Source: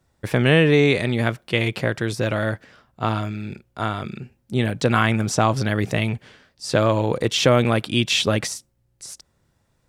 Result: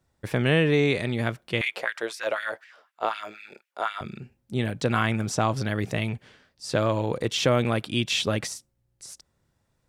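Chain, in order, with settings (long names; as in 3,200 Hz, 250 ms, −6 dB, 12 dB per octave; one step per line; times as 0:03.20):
0:01.61–0:04.01: auto-filter high-pass sine 4 Hz 480–2,300 Hz
level −5.5 dB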